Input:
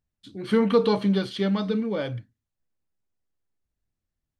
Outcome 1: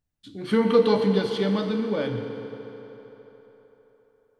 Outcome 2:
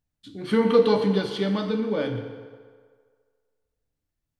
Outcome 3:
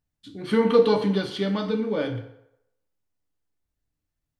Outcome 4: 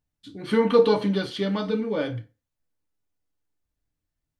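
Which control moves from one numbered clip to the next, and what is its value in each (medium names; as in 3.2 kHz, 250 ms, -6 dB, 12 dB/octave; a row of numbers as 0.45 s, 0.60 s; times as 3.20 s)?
FDN reverb, RT60: 4.1 s, 1.8 s, 0.82 s, 0.32 s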